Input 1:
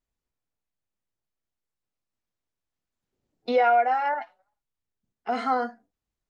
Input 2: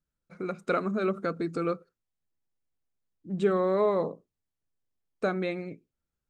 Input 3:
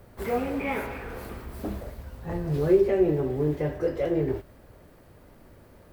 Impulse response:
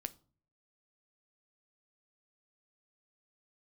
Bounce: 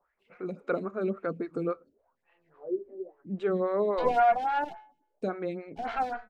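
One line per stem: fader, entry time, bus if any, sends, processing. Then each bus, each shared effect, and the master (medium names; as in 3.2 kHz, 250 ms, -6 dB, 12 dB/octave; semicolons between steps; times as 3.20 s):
0.0 dB, 0.50 s, no send, comb filter that takes the minimum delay 1.3 ms; de-hum 214.7 Hz, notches 36
0.0 dB, 0.00 s, no send, none
-4.0 dB, 0.00 s, no send, wah-wah 0.96 Hz 260–2800 Hz, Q 6.4; auto duck -10 dB, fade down 0.65 s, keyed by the second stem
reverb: none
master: treble shelf 5 kHz -11 dB; lamp-driven phase shifter 3.6 Hz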